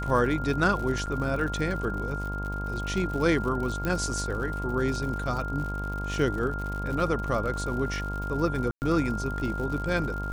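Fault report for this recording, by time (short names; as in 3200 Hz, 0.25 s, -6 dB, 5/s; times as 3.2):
buzz 50 Hz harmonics 22 -33 dBFS
crackle 98/s -34 dBFS
tone 1400 Hz -34 dBFS
1.06–1.07 gap 8.4 ms
3.85 pop -16 dBFS
8.71–8.82 gap 0.109 s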